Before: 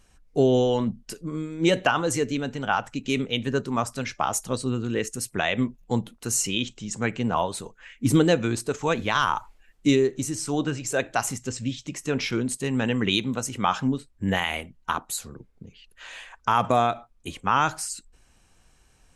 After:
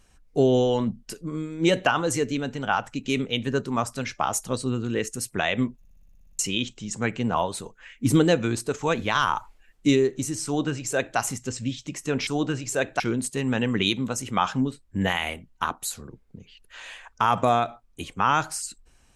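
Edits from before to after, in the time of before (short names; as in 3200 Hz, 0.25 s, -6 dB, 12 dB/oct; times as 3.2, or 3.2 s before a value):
5.79 stutter in place 0.06 s, 10 plays
10.45–11.18 copy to 12.27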